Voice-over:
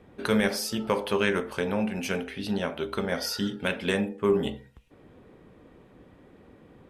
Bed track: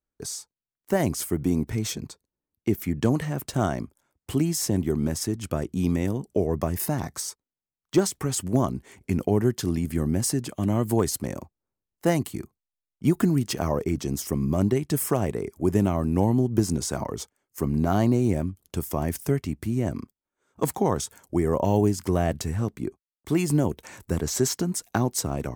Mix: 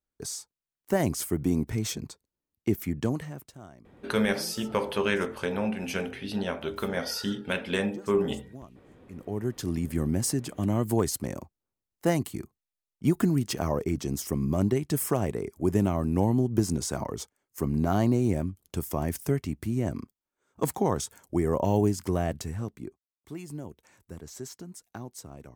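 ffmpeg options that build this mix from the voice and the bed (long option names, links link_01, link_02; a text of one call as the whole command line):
ffmpeg -i stem1.wav -i stem2.wav -filter_complex "[0:a]adelay=3850,volume=-1.5dB[link_01];[1:a]volume=18.5dB,afade=type=out:start_time=2.76:duration=0.82:silence=0.0891251,afade=type=in:start_time=9.09:duration=0.78:silence=0.0944061,afade=type=out:start_time=21.88:duration=1.48:silence=0.199526[link_02];[link_01][link_02]amix=inputs=2:normalize=0" out.wav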